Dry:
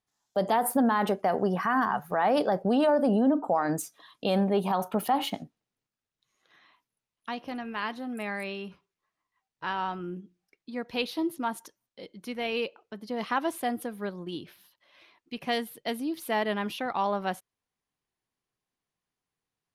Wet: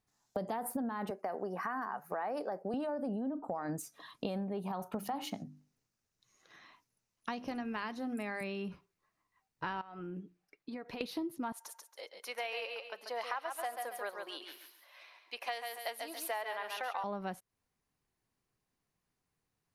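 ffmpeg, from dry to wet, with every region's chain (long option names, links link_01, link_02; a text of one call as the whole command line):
ffmpeg -i in.wav -filter_complex "[0:a]asettb=1/sr,asplit=3[link_01][link_02][link_03];[link_01]atrim=end=1.104[link_04];[link_02]atrim=start=1.1:end=2.74,asetpts=PTS-STARTPTS,afade=type=in:duration=0.004:curve=qsin,afade=type=out:start_time=1.636:duration=0.004:curve=qsin,highpass=340,equalizer=frequency=3400:width=3.3:gain=-10[link_05];[link_03]atrim=start=2.736[link_06];[link_04][link_05]acrossfade=duration=0.004:curve1=hsin:curve2=qsin[link_07];[link_07][link_06]acrossfade=duration=0.004:curve1=qsin:curve2=hsin,asettb=1/sr,asplit=3[link_08][link_09][link_10];[link_08]atrim=end=4.934[link_11];[link_09]atrim=start=4.93:end=8.41,asetpts=PTS-STARTPTS,afade=type=in:duration=0.004:curve=qsin,afade=type=out:start_time=3.476:duration=0.004:curve=qsin,equalizer=frequency=6000:width=1.9:gain=7,bandreject=frequency=50:width_type=h:width=6,bandreject=frequency=100:width_type=h:width=6,bandreject=frequency=150:width_type=h:width=6,bandreject=frequency=200:width_type=h:width=6,bandreject=frequency=250:width_type=h:width=6,bandreject=frequency=300:width_type=h:width=6[link_12];[link_10]atrim=start=8.406[link_13];[link_11][link_12]acrossfade=duration=0.004:curve1=hsin:curve2=qsin[link_14];[link_14][link_13]acrossfade=duration=0.004:curve1=qsin:curve2=hsin,asettb=1/sr,asplit=3[link_15][link_16][link_17];[link_15]atrim=end=9.814[link_18];[link_16]atrim=start=9.81:end=11.01,asetpts=PTS-STARTPTS,afade=type=in:duration=0.004:curve=qsin,afade=type=out:start_time=1.196:duration=0.004:curve=qsin,bass=frequency=250:gain=-9,treble=frequency=4000:gain=-6,aecho=1:1:6.9:0.31,atrim=end_sample=52920,acompressor=threshold=-43dB:ratio=10:attack=3.2:release=140:knee=1:detection=peak[link_19];[link_17]atrim=start=11.006[link_20];[link_18][link_19]acrossfade=duration=0.004:curve1=hsin:curve2=qsin[link_21];[link_21][link_20]acrossfade=duration=0.004:curve1=qsin:curve2=hsin,asettb=1/sr,asplit=3[link_22][link_23][link_24];[link_22]atrim=end=11.524[link_25];[link_23]atrim=start=11.52:end=17.04,asetpts=PTS-STARTPTS,afade=type=in:duration=0.004:curve=qsin,afade=type=out:start_time=5.516:duration=0.004:curve=qsin,highpass=frequency=600:width=0.5412,highpass=frequency=600:width=1.3066,aecho=1:1:138|276|414:0.473|0.128|0.0345,atrim=end_sample=243432[link_26];[link_24]atrim=start=17.036[link_27];[link_25][link_26]acrossfade=duration=0.004:curve1=hsin:curve2=qsin[link_28];[link_28][link_27]acrossfade=duration=0.004:curve1=qsin:curve2=hsin,lowshelf=frequency=240:gain=7,acompressor=threshold=-37dB:ratio=8,equalizer=frequency=3300:width_type=o:width=0.32:gain=-5,volume=2dB" out.wav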